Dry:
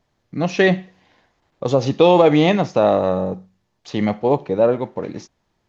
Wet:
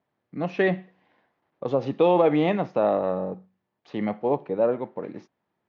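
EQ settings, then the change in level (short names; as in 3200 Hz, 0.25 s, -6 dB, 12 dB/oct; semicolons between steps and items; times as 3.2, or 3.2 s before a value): HPF 160 Hz 12 dB/oct; LPF 2400 Hz 12 dB/oct; -6.5 dB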